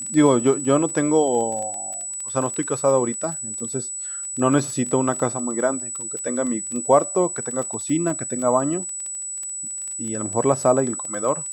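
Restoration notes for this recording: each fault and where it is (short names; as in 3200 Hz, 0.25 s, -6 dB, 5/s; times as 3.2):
crackle 19/s -27 dBFS
tone 7900 Hz -28 dBFS
8.1 gap 2.2 ms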